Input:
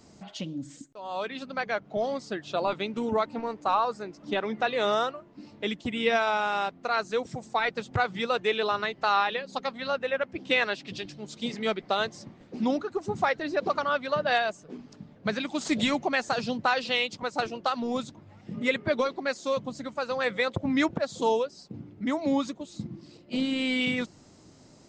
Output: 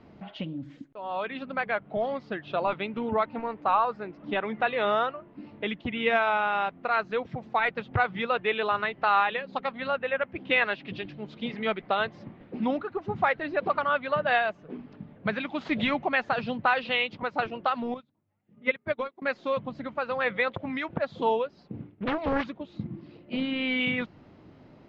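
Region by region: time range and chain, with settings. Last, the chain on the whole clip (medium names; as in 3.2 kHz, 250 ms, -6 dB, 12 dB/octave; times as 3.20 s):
17.94–19.22 s: hum notches 60/120/180/240/300 Hz + upward expansion 2.5:1, over -40 dBFS
20.54–20.94 s: tilt EQ +2 dB/octave + compression 10:1, threshold -27 dBFS
21.77–22.44 s: expander -42 dBFS + treble shelf 2.3 kHz +6.5 dB + loudspeaker Doppler distortion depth 0.97 ms
whole clip: low-pass 3 kHz 24 dB/octave; dynamic bell 330 Hz, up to -5 dB, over -37 dBFS, Q 0.78; trim +2.5 dB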